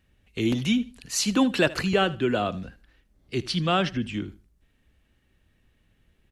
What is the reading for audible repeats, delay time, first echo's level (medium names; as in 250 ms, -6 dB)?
2, 77 ms, -19.0 dB